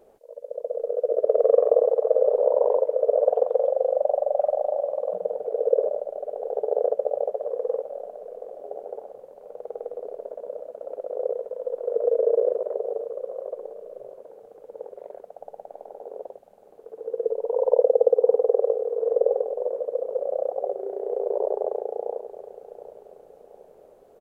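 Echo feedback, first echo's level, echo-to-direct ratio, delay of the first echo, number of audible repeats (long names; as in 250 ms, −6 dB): 42%, −14.0 dB, −13.0 dB, 724 ms, 3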